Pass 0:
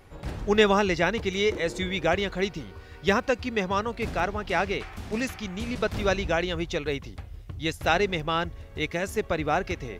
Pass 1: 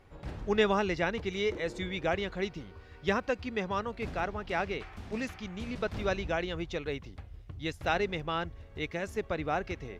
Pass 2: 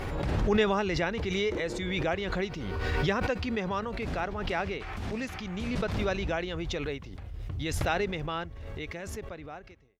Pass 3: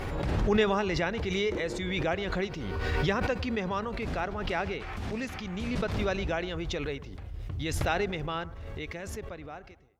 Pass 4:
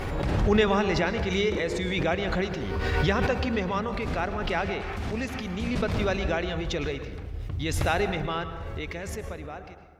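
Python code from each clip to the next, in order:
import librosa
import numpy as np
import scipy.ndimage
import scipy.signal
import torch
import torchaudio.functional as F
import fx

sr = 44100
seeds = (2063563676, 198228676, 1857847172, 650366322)

y1 = fx.high_shelf(x, sr, hz=7200.0, db=-11.0)
y1 = y1 * 10.0 ** (-6.0 / 20.0)
y2 = fx.fade_out_tail(y1, sr, length_s=1.9)
y2 = fx.pre_swell(y2, sr, db_per_s=23.0)
y3 = fx.echo_bbd(y2, sr, ms=105, stages=1024, feedback_pct=43, wet_db=-18.0)
y4 = fx.rev_plate(y3, sr, seeds[0], rt60_s=1.3, hf_ratio=0.45, predelay_ms=95, drr_db=9.0)
y4 = y4 * 10.0 ** (3.0 / 20.0)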